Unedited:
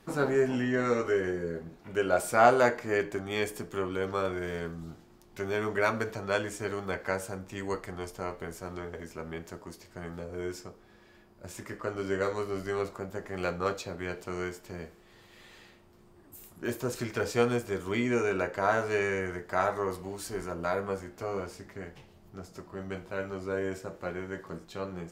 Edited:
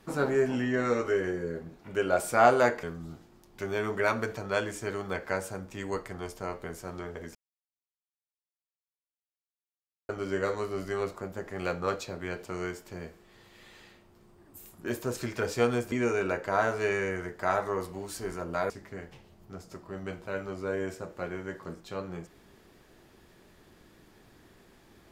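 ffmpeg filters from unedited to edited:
ffmpeg -i in.wav -filter_complex "[0:a]asplit=6[link_01][link_02][link_03][link_04][link_05][link_06];[link_01]atrim=end=2.832[link_07];[link_02]atrim=start=4.608:end=9.13,asetpts=PTS-STARTPTS,afade=type=out:start_time=4.518:duration=0.004:curve=hsin[link_08];[link_03]atrim=start=9.13:end=11.87,asetpts=PTS-STARTPTS,volume=0[link_09];[link_04]atrim=start=11.87:end=17.702,asetpts=PTS-STARTPTS,afade=type=in:duration=0.004:curve=hsin[link_10];[link_05]atrim=start=18.018:end=20.802[link_11];[link_06]atrim=start=21.538[link_12];[link_08][link_09][link_10]concat=n=3:v=0:a=1[link_13];[link_07][link_13]acrossfade=duration=0.004:curve1=hsin:curve2=hsin[link_14];[link_14][link_11]acrossfade=duration=0.004:curve1=hsin:curve2=hsin[link_15];[link_15][link_12]acrossfade=duration=0.004:curve1=hsin:curve2=hsin" out.wav

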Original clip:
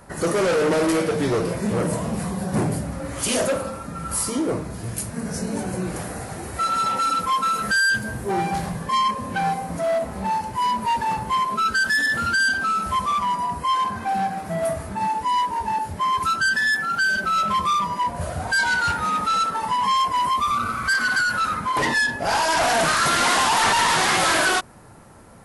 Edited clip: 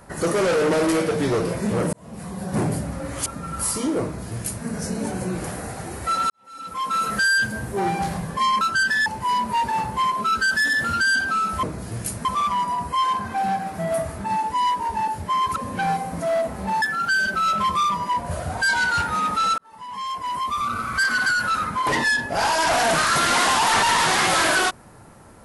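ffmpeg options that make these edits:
ffmpeg -i in.wav -filter_complex "[0:a]asplit=11[link_01][link_02][link_03][link_04][link_05][link_06][link_07][link_08][link_09][link_10][link_11];[link_01]atrim=end=1.93,asetpts=PTS-STARTPTS,afade=type=out:start_time=1.926:duration=0.004:curve=hsin[link_12];[link_02]atrim=start=1.93:end=3.262,asetpts=PTS-STARTPTS,afade=type=in:duration=0.73[link_13];[link_03]atrim=start=3.778:end=6.82,asetpts=PTS-STARTPTS,afade=type=out:start_time=3.038:duration=0.004:curve=hsin[link_14];[link_04]atrim=start=6.82:end=9.132,asetpts=PTS-STARTPTS,afade=type=in:duration=0.7:curve=qua[link_15];[link_05]atrim=start=16.268:end=16.722[link_16];[link_06]atrim=start=10.388:end=12.962[link_17];[link_07]atrim=start=4.548:end=5.172[link_18];[link_08]atrim=start=12.958:end=16.272[link_19];[link_09]atrim=start=9.128:end=10.392[link_20];[link_10]atrim=start=16.718:end=19.48,asetpts=PTS-STARTPTS,afade=type=out:start_time=2.758:duration=0.004:curve=hsin[link_21];[link_11]atrim=start=19.48,asetpts=PTS-STARTPTS,afade=type=in:duration=1.42[link_22];[link_12][link_13]concat=n=2:v=0:a=1[link_23];[link_14][link_15]concat=n=2:v=0:a=1[link_24];[link_23][link_24]acrossfade=duration=0.004:curve1=hsin:curve2=hsin[link_25];[link_25][link_16]acrossfade=duration=0.004:curve1=hsin:curve2=hsin[link_26];[link_26][link_17]acrossfade=duration=0.004:curve1=hsin:curve2=hsin[link_27];[link_27][link_18]acrossfade=duration=0.004:curve1=hsin:curve2=hsin[link_28];[link_28][link_19]acrossfade=duration=0.004:curve1=hsin:curve2=hsin[link_29];[link_29][link_20]acrossfade=duration=0.004:curve1=hsin:curve2=hsin[link_30];[link_21][link_22]concat=n=2:v=0:a=1[link_31];[link_30][link_31]acrossfade=duration=0.004:curve1=hsin:curve2=hsin" out.wav

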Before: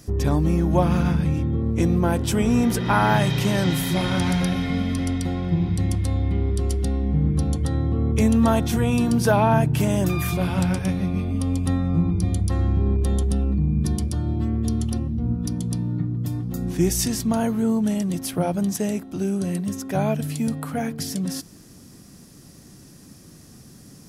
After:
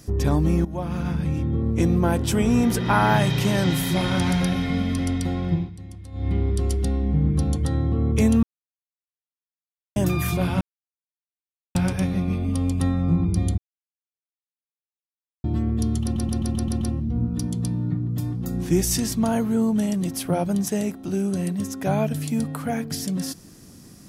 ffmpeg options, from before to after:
ffmpeg -i in.wav -filter_complex "[0:a]asplit=15[link_01][link_02][link_03][link_04][link_05][link_06][link_07][link_08][link_09][link_10][link_11][link_12][link_13][link_14][link_15];[link_01]atrim=end=0.65,asetpts=PTS-STARTPTS,afade=type=out:start_time=0.646:duration=0.004:curve=hsin:silence=0.177828[link_16];[link_02]atrim=start=0.65:end=5.71,asetpts=PTS-STARTPTS,afade=type=in:duration=0.93:silence=0.177828,afade=type=out:start_time=4.87:duration=0.19:silence=0.149624[link_17];[link_03]atrim=start=5.71:end=6.12,asetpts=PTS-STARTPTS,volume=-16.5dB[link_18];[link_04]atrim=start=6.12:end=8.43,asetpts=PTS-STARTPTS,afade=type=in:duration=0.19:silence=0.149624,afade=type=out:start_time=2.306:duration=0.004:curve=hsin[link_19];[link_05]atrim=start=8.43:end=9.96,asetpts=PTS-STARTPTS,volume=0[link_20];[link_06]atrim=start=9.96:end=10.61,asetpts=PTS-STARTPTS,afade=type=in:duration=0.004:curve=hsin,afade=type=out:start_time=0.646:duration=0.004:curve=hsin,apad=pad_dur=1.14[link_21];[link_07]atrim=start=10.61:end=12.44,asetpts=PTS-STARTPTS,afade=type=in:duration=0.004:curve=hsin,afade=type=out:start_time=1.826:duration=0.004:curve=hsin[link_22];[link_08]atrim=start=12.44:end=14.3,asetpts=PTS-STARTPTS,volume=0[link_23];[link_09]atrim=start=14.3:end=15.022,asetpts=PTS-STARTPTS,afade=type=in:duration=0.004:curve=hsin[link_24];[link_10]atrim=start=14.888:end=15.022[link_25];[link_11]atrim=start=14.888:end=15.022[link_26];[link_12]atrim=start=14.888:end=15.022[link_27];[link_13]atrim=start=14.888:end=15.022[link_28];[link_14]atrim=start=14.888:end=15.022[link_29];[link_15]atrim=start=14.888[link_30];[link_16][link_17][link_18][link_19][link_20][link_21][link_22][link_23][link_24]concat=n=9:v=0:a=1[link_31];[link_31][link_25]acrossfade=duration=0.004:curve1=hsin:curve2=hsin[link_32];[link_32][link_26]acrossfade=duration=0.004:curve1=hsin:curve2=hsin[link_33];[link_33][link_27]acrossfade=duration=0.004:curve1=hsin:curve2=hsin[link_34];[link_34][link_28]acrossfade=duration=0.004:curve1=hsin:curve2=hsin[link_35];[link_35][link_29]acrossfade=duration=0.004:curve1=hsin:curve2=hsin[link_36];[link_36][link_30]acrossfade=duration=0.004:curve1=hsin:curve2=hsin" out.wav

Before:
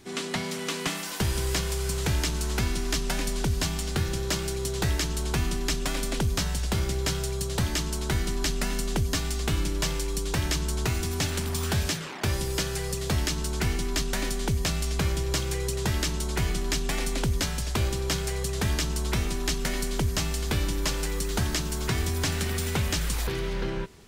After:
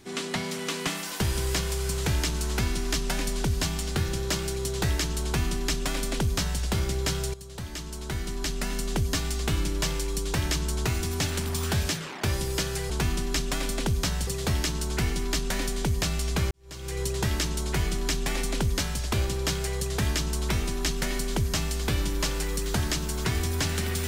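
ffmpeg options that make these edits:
ffmpeg -i in.wav -filter_complex "[0:a]asplit=5[link_01][link_02][link_03][link_04][link_05];[link_01]atrim=end=7.34,asetpts=PTS-STARTPTS,afade=type=out:start_time=7.336:duration=0.004:curve=hsin:silence=0.177828[link_06];[link_02]atrim=start=7.34:end=12.902,asetpts=PTS-STARTPTS,afade=type=in:duration=1.72:silence=0.177828[link_07];[link_03]atrim=start=5.238:end=6.612[link_08];[link_04]atrim=start=12.898:end=15.14,asetpts=PTS-STARTPTS,afade=type=out:start_time=2.238:duration=0.004:curve=hsin[link_09];[link_05]atrim=start=15.14,asetpts=PTS-STARTPTS,afade=type=in:duration=0.5:curve=qua[link_10];[link_06][link_07]concat=n=2:v=0:a=1[link_11];[link_11][link_08]acrossfade=duration=0.004:curve1=hsin:curve2=hsin[link_12];[link_09][link_10]concat=n=2:v=0:a=1[link_13];[link_12][link_13]acrossfade=duration=0.004:curve1=hsin:curve2=hsin" out.wav

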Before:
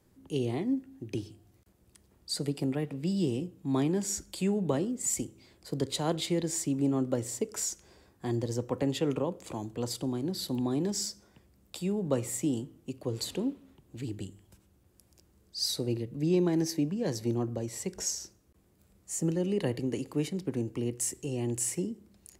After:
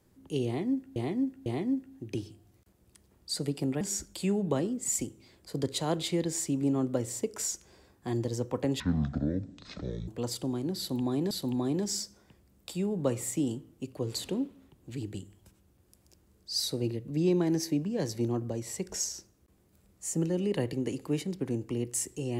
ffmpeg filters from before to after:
ffmpeg -i in.wav -filter_complex "[0:a]asplit=7[link_01][link_02][link_03][link_04][link_05][link_06][link_07];[link_01]atrim=end=0.962[link_08];[link_02]atrim=start=0.458:end=0.962[link_09];[link_03]atrim=start=0.458:end=2.812[link_10];[link_04]atrim=start=3.988:end=8.984[link_11];[link_05]atrim=start=8.98:end=9.67,asetpts=PTS-STARTPTS,asetrate=23814,aresample=44100[link_12];[link_06]atrim=start=9.666:end=10.902[link_13];[link_07]atrim=start=10.368[link_14];[link_08][link_09]acrossfade=duration=0.004:curve1=hsin:curve2=hsin[link_15];[link_15][link_10]acrossfade=duration=0.004:curve1=hsin:curve2=hsin[link_16];[link_16][link_11]acrossfade=duration=0.004:curve1=hsin:curve2=hsin[link_17];[link_17][link_12]acrossfade=duration=0.004:curve1=hsin:curve2=hsin[link_18];[link_18][link_13]acrossfade=duration=0.004:curve1=hsin:curve2=hsin[link_19];[link_19][link_14]acrossfade=duration=0.004:curve1=hsin:curve2=hsin" out.wav

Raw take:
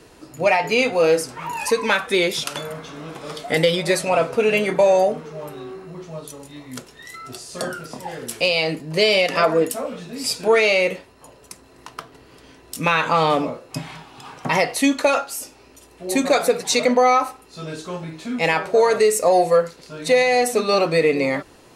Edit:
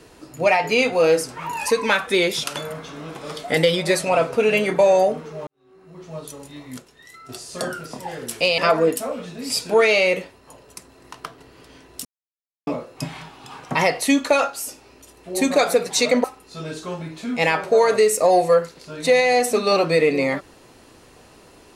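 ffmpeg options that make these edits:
ffmpeg -i in.wav -filter_complex "[0:a]asplit=8[link_01][link_02][link_03][link_04][link_05][link_06][link_07][link_08];[link_01]atrim=end=5.47,asetpts=PTS-STARTPTS,afade=type=out:start_time=5.466:duration=0.004:curve=hsin[link_09];[link_02]atrim=start=5.47:end=6.772,asetpts=PTS-STARTPTS,afade=type=in:duration=0.69:curve=qua[link_10];[link_03]atrim=start=6.768:end=7.292,asetpts=PTS-STARTPTS,volume=-7dB[link_11];[link_04]atrim=start=7.288:end=8.582[link_12];[link_05]atrim=start=9.318:end=12.79,asetpts=PTS-STARTPTS,afade=type=out:start_time=3.468:duration=0.004:curve=hsin[link_13];[link_06]atrim=start=12.79:end=13.41,asetpts=PTS-STARTPTS,volume=0[link_14];[link_07]atrim=start=13.41:end=16.982,asetpts=PTS-STARTPTS,afade=type=in:duration=0.004:curve=hsin[link_15];[link_08]atrim=start=17.258[link_16];[link_09][link_10]concat=n=2:v=0:a=1[link_17];[link_17][link_11]acrossfade=duration=0.004:curve1=hsin:curve2=hsin[link_18];[link_18][link_12]acrossfade=duration=0.004:curve1=hsin:curve2=hsin[link_19];[link_13][link_14][link_15]concat=n=3:v=0:a=1[link_20];[link_19][link_20]acrossfade=duration=0.004:curve1=hsin:curve2=hsin[link_21];[link_21][link_16]acrossfade=duration=0.004:curve1=hsin:curve2=hsin" out.wav

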